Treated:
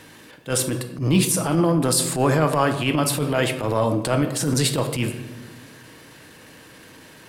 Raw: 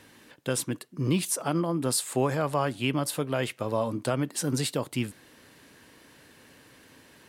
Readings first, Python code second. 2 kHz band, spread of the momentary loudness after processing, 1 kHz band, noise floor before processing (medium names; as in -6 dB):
+8.0 dB, 8 LU, +7.5 dB, -56 dBFS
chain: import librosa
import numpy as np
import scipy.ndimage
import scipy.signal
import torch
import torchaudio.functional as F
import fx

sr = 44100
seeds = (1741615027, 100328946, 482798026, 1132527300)

y = fx.room_shoebox(x, sr, seeds[0], volume_m3=520.0, walls='mixed', distance_m=0.58)
y = fx.transient(y, sr, attack_db=-12, sustain_db=1)
y = y * 10.0 ** (8.5 / 20.0)